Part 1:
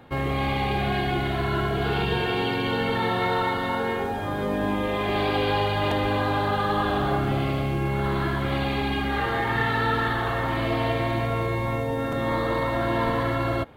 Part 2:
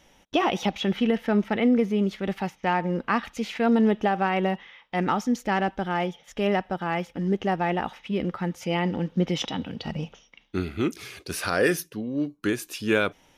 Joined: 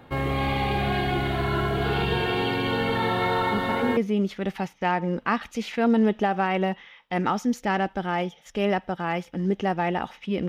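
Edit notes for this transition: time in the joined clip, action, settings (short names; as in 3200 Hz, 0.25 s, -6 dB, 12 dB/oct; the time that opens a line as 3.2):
part 1
3.52 add part 2 from 1.34 s 0.45 s -7 dB
3.97 switch to part 2 from 1.79 s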